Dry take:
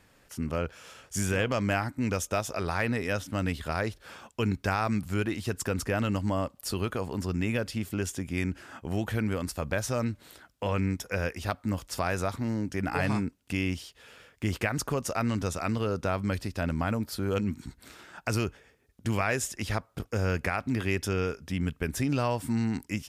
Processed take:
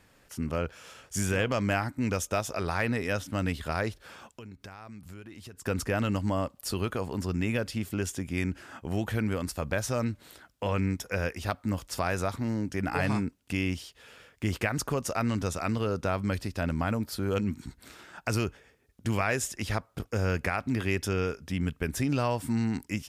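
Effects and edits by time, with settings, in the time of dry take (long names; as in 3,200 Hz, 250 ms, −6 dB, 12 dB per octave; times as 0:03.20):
0:04.03–0:05.66: downward compressor, threshold −43 dBFS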